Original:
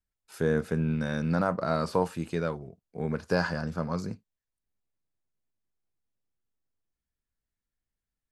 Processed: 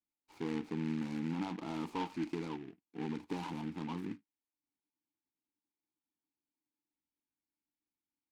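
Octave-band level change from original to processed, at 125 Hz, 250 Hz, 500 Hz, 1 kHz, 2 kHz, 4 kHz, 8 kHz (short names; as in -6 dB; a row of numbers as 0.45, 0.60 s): -13.5, -6.0, -16.0, -10.0, -14.5, -7.0, -10.5 dB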